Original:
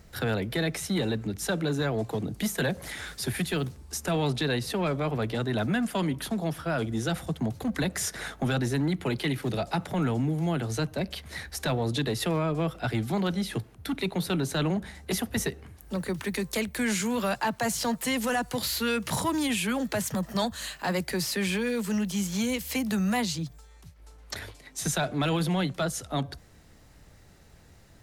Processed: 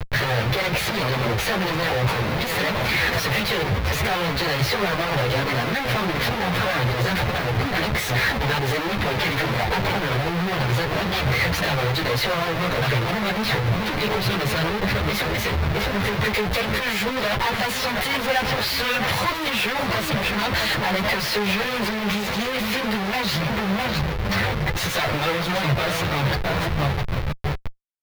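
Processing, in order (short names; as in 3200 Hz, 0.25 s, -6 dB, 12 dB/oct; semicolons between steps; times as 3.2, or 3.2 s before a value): gliding pitch shift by +2.5 st ending unshifted; feedback echo 0.658 s, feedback 35%, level -12 dB; added harmonics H 6 -18 dB, 7 -38 dB, 8 -39 dB, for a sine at -16.5 dBFS; in parallel at +1 dB: limiter -28.5 dBFS, peak gain reduction 11.5 dB; on the sum: dynamic EQ 150 Hz, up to -5 dB, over -42 dBFS, Q 4.6; Schmitt trigger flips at -39 dBFS; graphic EQ 125/250/500/1000/2000/4000/8000 Hz +11/-7/+5/+3/+7/+6/-10 dB; ensemble effect; gain +5 dB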